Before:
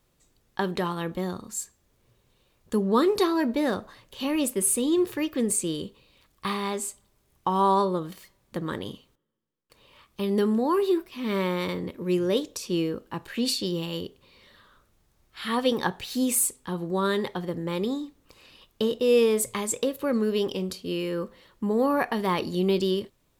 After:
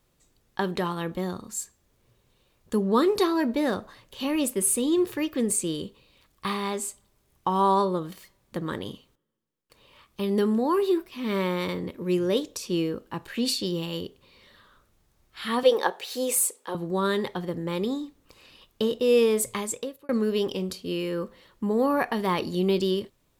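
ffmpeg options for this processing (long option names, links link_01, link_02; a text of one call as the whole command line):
ffmpeg -i in.wav -filter_complex "[0:a]asettb=1/sr,asplit=3[link_01][link_02][link_03];[link_01]atrim=end=15.634[link_04];[link_02]atrim=start=15.63:end=16.75,asetpts=PTS-STARTPTS,afade=type=in:duration=0.004:curve=qsin,afade=type=out:start_time=1.116:duration=0.004:curve=qsin,highpass=frequency=490:width_type=q:width=2.1[link_05];[link_03]atrim=start=16.746[link_06];[link_04][link_05]acrossfade=duration=0.004:curve1=hsin:curve2=qsin[link_07];[link_07][link_06]acrossfade=duration=0.004:curve1=qsin:curve2=hsin,asplit=2[link_08][link_09];[link_08]atrim=end=20.09,asetpts=PTS-STARTPTS,afade=type=out:start_time=19.55:duration=0.54[link_10];[link_09]atrim=start=20.09,asetpts=PTS-STARTPTS,afade=type=in:duration=0.004:curve=hsin[link_11];[link_10][link_11]concat=n=2:v=0:a=1" out.wav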